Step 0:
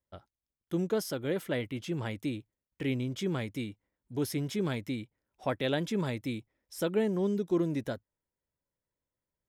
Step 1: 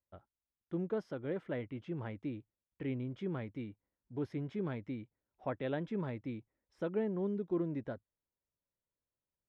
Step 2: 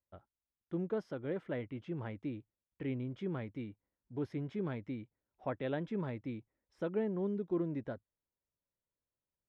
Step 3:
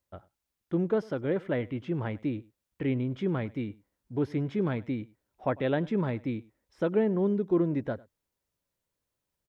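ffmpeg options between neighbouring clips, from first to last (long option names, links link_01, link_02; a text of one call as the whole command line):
ffmpeg -i in.wav -af "lowpass=1800,volume=-6dB" out.wav
ffmpeg -i in.wav -af anull out.wav
ffmpeg -i in.wav -af "aecho=1:1:100:0.0708,volume=9dB" out.wav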